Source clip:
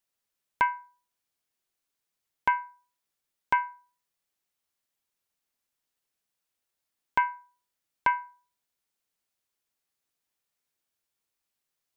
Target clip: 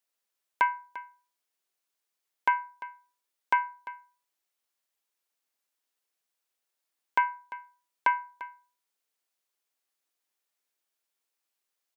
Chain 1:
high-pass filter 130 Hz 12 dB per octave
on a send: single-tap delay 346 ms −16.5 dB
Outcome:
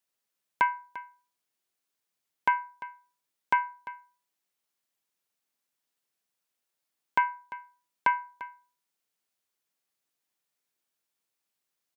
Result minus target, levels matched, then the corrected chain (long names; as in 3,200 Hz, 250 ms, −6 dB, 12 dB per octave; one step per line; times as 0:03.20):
125 Hz band +11.5 dB
high-pass filter 320 Hz 12 dB per octave
on a send: single-tap delay 346 ms −16.5 dB